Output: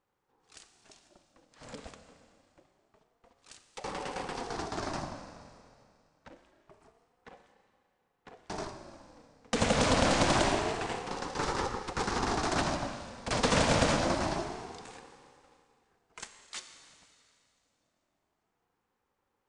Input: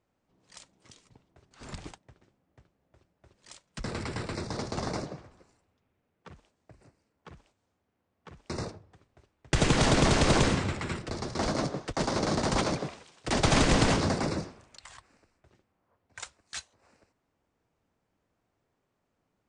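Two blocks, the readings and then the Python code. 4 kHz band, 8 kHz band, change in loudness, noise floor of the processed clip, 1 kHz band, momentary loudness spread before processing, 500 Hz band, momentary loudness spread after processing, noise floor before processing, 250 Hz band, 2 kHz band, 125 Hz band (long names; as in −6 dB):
−2.0 dB, −2.0 dB, −2.5 dB, −80 dBFS, +0.5 dB, 21 LU, −1.0 dB, 21 LU, −79 dBFS, −4.0 dB, −1.5 dB, −6.5 dB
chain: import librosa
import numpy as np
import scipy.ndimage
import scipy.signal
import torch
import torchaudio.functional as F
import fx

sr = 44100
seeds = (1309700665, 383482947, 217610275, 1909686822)

y = scipy.signal.sosfilt(scipy.signal.butter(4, 69.0, 'highpass', fs=sr, output='sos'), x)
y = fx.rev_schroeder(y, sr, rt60_s=2.4, comb_ms=28, drr_db=7.5)
y = fx.ring_lfo(y, sr, carrier_hz=510.0, swing_pct=30, hz=0.26)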